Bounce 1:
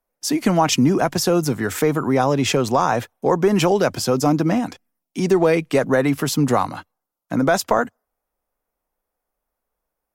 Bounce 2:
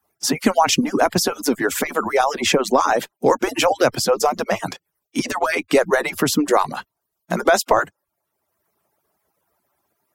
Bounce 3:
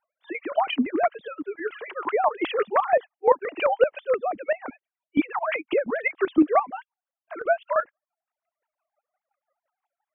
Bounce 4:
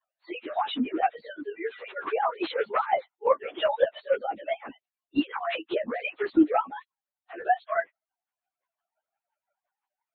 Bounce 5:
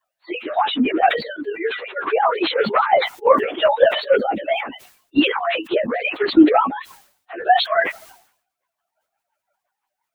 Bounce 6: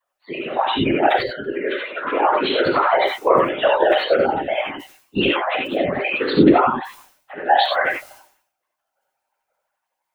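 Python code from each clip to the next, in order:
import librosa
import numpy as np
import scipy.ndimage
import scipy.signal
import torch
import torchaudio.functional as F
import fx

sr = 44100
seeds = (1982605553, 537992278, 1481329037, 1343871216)

y1 = fx.hpss_only(x, sr, part='percussive')
y1 = fx.band_squash(y1, sr, depth_pct=40)
y1 = y1 * librosa.db_to_amplitude(3.5)
y2 = fx.sine_speech(y1, sr)
y2 = fx.chopper(y2, sr, hz=5.8, depth_pct=65, duty_pct=25)
y3 = fx.partial_stretch(y2, sr, pct=108)
y4 = fx.sustainer(y3, sr, db_per_s=99.0)
y4 = y4 * librosa.db_to_amplitude(8.5)
y5 = fx.whisperise(y4, sr, seeds[0])
y5 = fx.rev_gated(y5, sr, seeds[1], gate_ms=110, shape='rising', drr_db=0.0)
y5 = y5 * librosa.db_to_amplitude(-2.5)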